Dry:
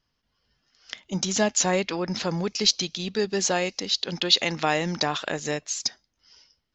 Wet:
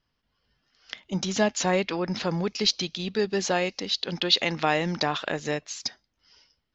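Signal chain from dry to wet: low-pass 4.6 kHz 12 dB/octave

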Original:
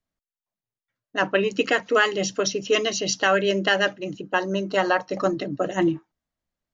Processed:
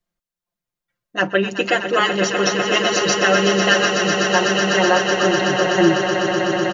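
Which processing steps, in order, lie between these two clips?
comb 5.7 ms, depth 89%; echo with a slow build-up 125 ms, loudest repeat 8, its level -9.5 dB; trim +1 dB

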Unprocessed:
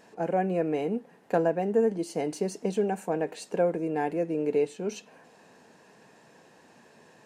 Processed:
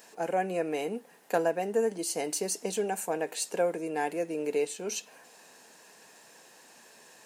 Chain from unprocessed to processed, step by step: RIAA curve recording

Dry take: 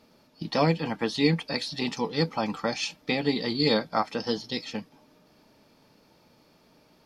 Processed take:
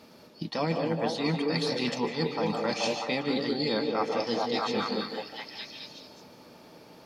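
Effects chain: high-pass 41 Hz; bass shelf 97 Hz -6.5 dB; on a send: repeats whose band climbs or falls 214 ms, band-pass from 410 Hz, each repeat 0.7 oct, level 0 dB; on the sum: reverberation RT60 0.45 s, pre-delay 146 ms, DRR 9 dB; reverse; compression 6:1, threshold -33 dBFS, peak gain reduction 15 dB; reverse; trim +7 dB

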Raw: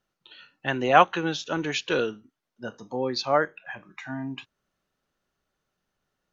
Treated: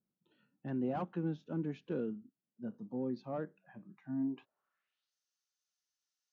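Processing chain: saturation -15.5 dBFS, distortion -9 dB; band-pass sweep 200 Hz -> 5.7 kHz, 4.13–5.15 s; trim +1 dB

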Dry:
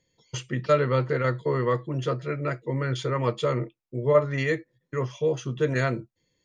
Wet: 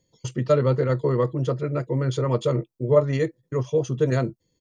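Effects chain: peaking EQ 2 kHz -10.5 dB 1.8 oct; tempo 1.4×; trim +4.5 dB

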